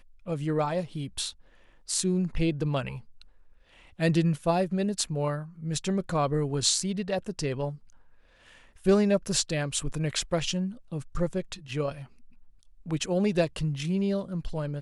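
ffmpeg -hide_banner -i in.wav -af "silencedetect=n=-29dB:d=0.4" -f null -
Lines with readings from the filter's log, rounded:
silence_start: 1.30
silence_end: 1.90 | silence_duration: 0.60
silence_start: 2.89
silence_end: 4.00 | silence_duration: 1.12
silence_start: 7.70
silence_end: 8.86 | silence_duration: 1.16
silence_start: 11.92
silence_end: 12.91 | silence_duration: 0.99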